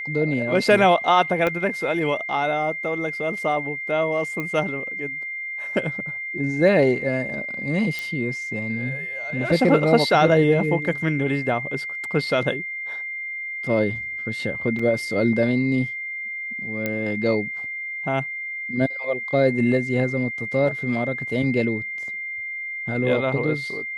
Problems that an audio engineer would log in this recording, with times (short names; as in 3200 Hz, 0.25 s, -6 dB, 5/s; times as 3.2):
tone 2100 Hz -28 dBFS
1.47 pop -11 dBFS
4.4 pop -16 dBFS
7.99 pop
14.79 gap 4 ms
16.86 pop -11 dBFS